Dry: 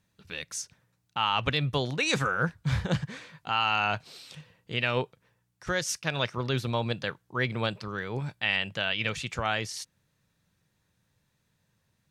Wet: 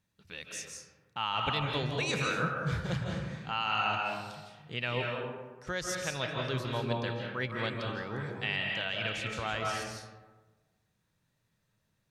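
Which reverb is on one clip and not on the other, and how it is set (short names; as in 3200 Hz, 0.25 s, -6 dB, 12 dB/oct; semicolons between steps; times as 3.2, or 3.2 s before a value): digital reverb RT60 1.3 s, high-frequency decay 0.45×, pre-delay 0.12 s, DRR 0 dB; gain -6.5 dB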